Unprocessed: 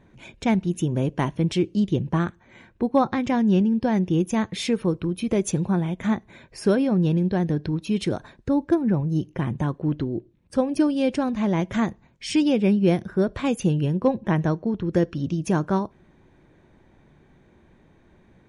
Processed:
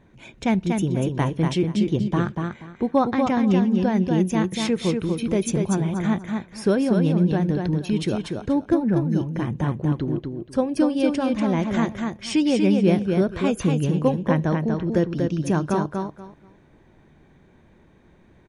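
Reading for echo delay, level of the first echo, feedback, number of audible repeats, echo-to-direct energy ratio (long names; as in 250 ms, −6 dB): 240 ms, −4.5 dB, 21%, 3, −4.5 dB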